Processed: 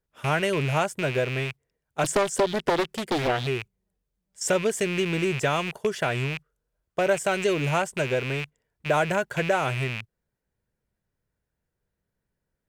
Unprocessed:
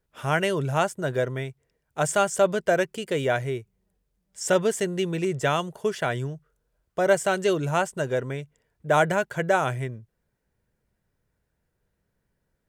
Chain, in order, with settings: rattling part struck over -40 dBFS, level -22 dBFS; gate -38 dBFS, range -8 dB; compressor 2:1, threshold -24 dBFS, peak gain reduction 6 dB; 2.04–3.47 Doppler distortion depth 0.93 ms; gain +2 dB

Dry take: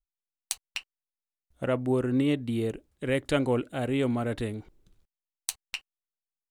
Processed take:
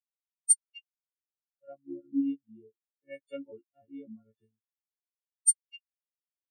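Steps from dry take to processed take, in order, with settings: frequency quantiser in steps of 4 st; spectral expander 4:1; gain -7 dB

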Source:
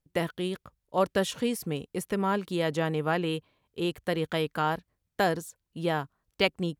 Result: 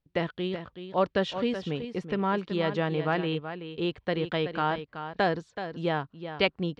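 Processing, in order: LPF 4500 Hz 24 dB/oct; on a send: echo 0.377 s -10 dB

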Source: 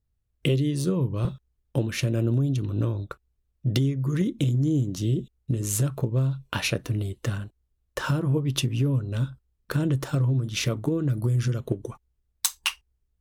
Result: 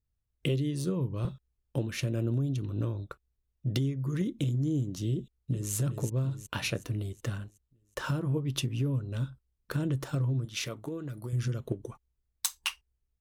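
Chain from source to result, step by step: 5.14–5.72 echo throw 0.37 s, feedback 50%, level -6 dB; 10.45–11.33 low shelf 360 Hz -10 dB; gain -6 dB

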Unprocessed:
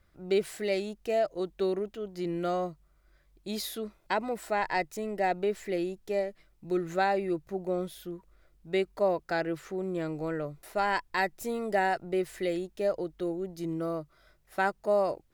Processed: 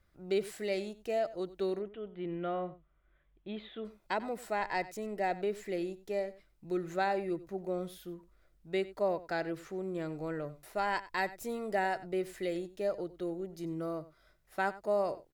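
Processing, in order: 1.79–3.85 elliptic low-pass 3400 Hz, stop band 40 dB; outdoor echo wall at 16 m, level -17 dB; gain -4.5 dB

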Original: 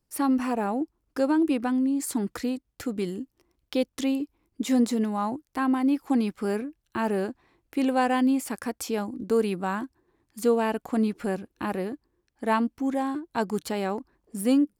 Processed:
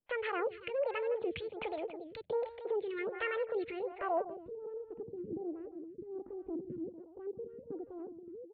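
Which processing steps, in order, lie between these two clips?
ending faded out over 1.77 s; Chebyshev low-pass 2500 Hz, order 8; gate -56 dBFS, range -20 dB; low shelf 190 Hz +9.5 dB; compressor 4:1, threshold -31 dBFS, peak gain reduction 13.5 dB; limiter -28 dBFS, peak gain reduction 7 dB; low-pass sweep 1500 Hz -> 150 Hz, 6.4–7.92; tapped delay 0.278/0.488 s -14/-11.5 dB; speed mistake 45 rpm record played at 78 rpm; photocell phaser 1.3 Hz; gain +1 dB

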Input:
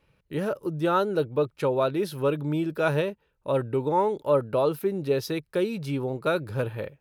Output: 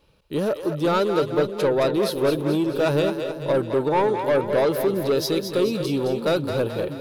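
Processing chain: graphic EQ 125/2000/4000 Hz -7/-10/+6 dB; soft clip -23 dBFS, distortion -12 dB; split-band echo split 440 Hz, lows 0.503 s, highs 0.216 s, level -7 dB; gain +7.5 dB

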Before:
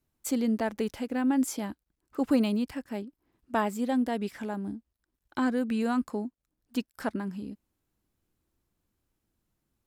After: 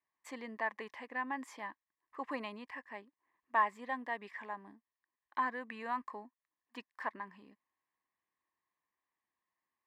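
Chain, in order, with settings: double band-pass 1400 Hz, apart 0.76 oct; gain +5.5 dB

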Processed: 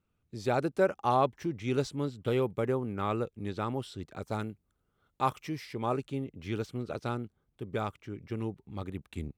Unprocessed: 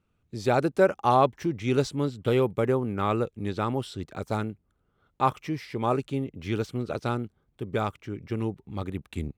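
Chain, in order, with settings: 4.39–5.73 high shelf 3900 Hz +7 dB; gain -5.5 dB

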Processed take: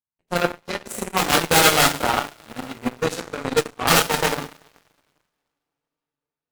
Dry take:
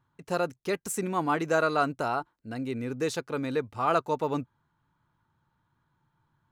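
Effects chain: wrapped overs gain 17.5 dB; two-slope reverb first 0.48 s, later 4.6 s, from -17 dB, DRR -6 dB; added harmonics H 4 -22 dB, 5 -9 dB, 7 -8 dB, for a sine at -5 dBFS; gain +2 dB

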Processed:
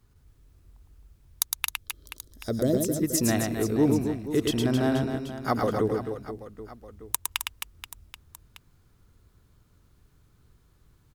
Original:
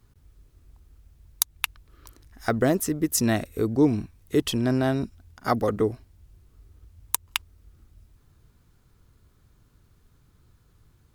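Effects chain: spectral gain 1.71–2.95, 650–3100 Hz -14 dB; reverse bouncing-ball echo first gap 0.11 s, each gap 1.4×, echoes 5; gain -3 dB

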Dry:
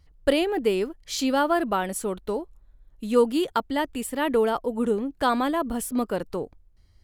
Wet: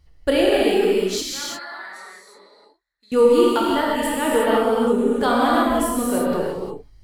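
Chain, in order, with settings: 1.22–3.12 double band-pass 2900 Hz, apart 1.1 oct; non-linear reverb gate 0.38 s flat, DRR -5.5 dB

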